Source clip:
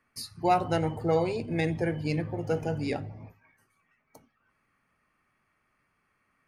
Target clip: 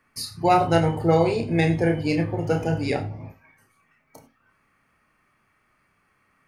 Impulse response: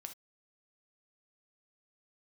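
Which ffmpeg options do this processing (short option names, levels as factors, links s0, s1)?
-filter_complex "[0:a]asplit=2[s0][s1];[1:a]atrim=start_sample=2205,adelay=30[s2];[s1][s2]afir=irnorm=-1:irlink=0,volume=0.944[s3];[s0][s3]amix=inputs=2:normalize=0,volume=2"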